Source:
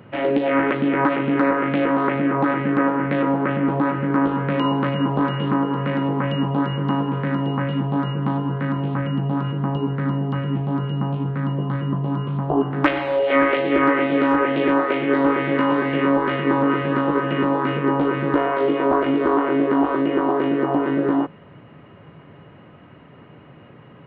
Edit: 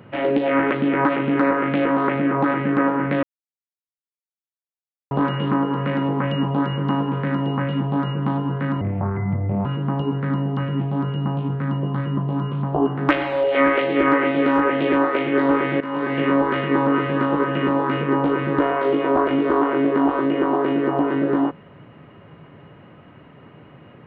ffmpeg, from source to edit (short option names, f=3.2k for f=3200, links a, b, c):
-filter_complex "[0:a]asplit=6[a][b][c][d][e][f];[a]atrim=end=3.23,asetpts=PTS-STARTPTS,afade=t=out:st=3.226:d=0.004:c=hsin[g];[b]atrim=start=3.23:end=5.11,asetpts=PTS-STARTPTS,volume=0[h];[c]atrim=start=5.11:end=8.814,asetpts=PTS-STARTPTS,afade=t=in:d=0.004:c=hsin[i];[d]atrim=start=8.81:end=9.41,asetpts=PTS-STARTPTS,asetrate=31311,aresample=44100[j];[e]atrim=start=9.406:end=15.56,asetpts=PTS-STARTPTS,afade=t=out:st=6.15:d=0.004:c=hsin:silence=0.177828[k];[f]atrim=start=15.56,asetpts=PTS-STARTPTS,afade=t=in:d=0.37:silence=0.177828[l];[g][h][i]concat=n=3:v=0:a=1[m];[m][j]acrossfade=d=0.004:c1=hsin:c2=hsin[n];[k][l]concat=n=2:v=0:a=1[o];[n][o]acrossfade=d=0.004:c1=hsin:c2=hsin"